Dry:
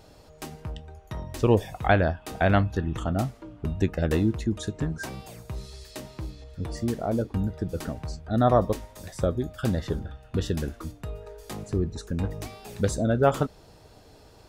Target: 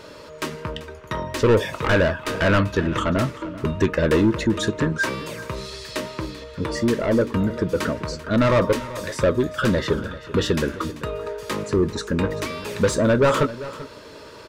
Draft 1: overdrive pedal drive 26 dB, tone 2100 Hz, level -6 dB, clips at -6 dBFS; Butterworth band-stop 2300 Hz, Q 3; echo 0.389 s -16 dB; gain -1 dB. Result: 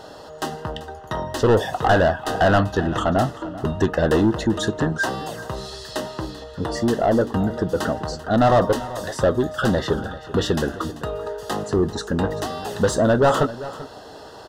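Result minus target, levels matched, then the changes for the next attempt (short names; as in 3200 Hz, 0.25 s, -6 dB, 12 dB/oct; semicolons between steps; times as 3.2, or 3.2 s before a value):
1000 Hz band +4.0 dB
change: Butterworth band-stop 750 Hz, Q 3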